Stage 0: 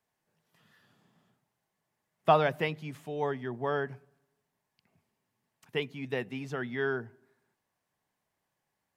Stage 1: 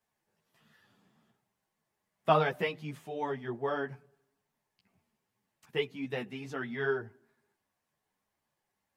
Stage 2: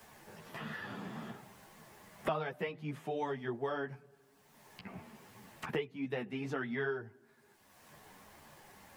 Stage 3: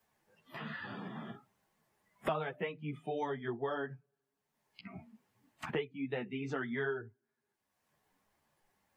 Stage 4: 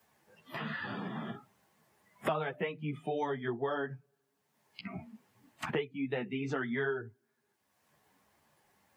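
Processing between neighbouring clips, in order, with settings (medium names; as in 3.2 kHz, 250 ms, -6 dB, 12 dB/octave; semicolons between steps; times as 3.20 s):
three-phase chorus; trim +2 dB
three bands compressed up and down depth 100%; trim -3 dB
spectral noise reduction 20 dB
high-pass 63 Hz; in parallel at +2 dB: compression, threshold -45 dBFS, peak gain reduction 15.5 dB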